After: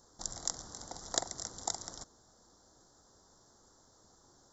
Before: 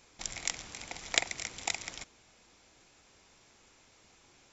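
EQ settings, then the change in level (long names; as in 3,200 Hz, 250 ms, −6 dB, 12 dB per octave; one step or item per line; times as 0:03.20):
Butterworth band-reject 2,500 Hz, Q 0.81
0.0 dB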